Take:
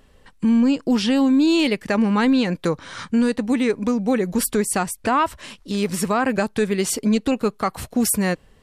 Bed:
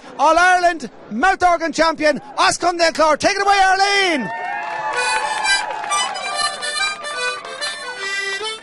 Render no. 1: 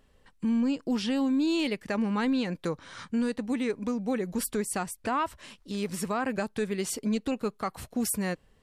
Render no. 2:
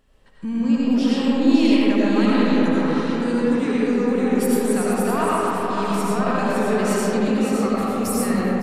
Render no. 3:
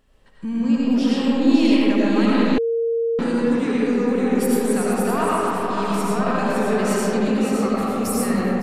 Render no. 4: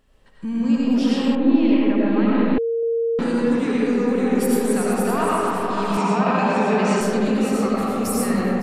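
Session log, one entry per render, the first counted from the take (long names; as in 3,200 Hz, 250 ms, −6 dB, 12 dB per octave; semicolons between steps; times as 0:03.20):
level −9.5 dB
single-tap delay 563 ms −6 dB; comb and all-pass reverb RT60 4.2 s, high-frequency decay 0.3×, pre-delay 50 ms, DRR −8 dB
0:02.58–0:03.19: beep over 461 Hz −18 dBFS
0:01.35–0:02.83: high-frequency loss of the air 420 metres; 0:05.97–0:07.01: loudspeaker in its box 130–7,300 Hz, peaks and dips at 180 Hz +5 dB, 880 Hz +8 dB, 2,500 Hz +7 dB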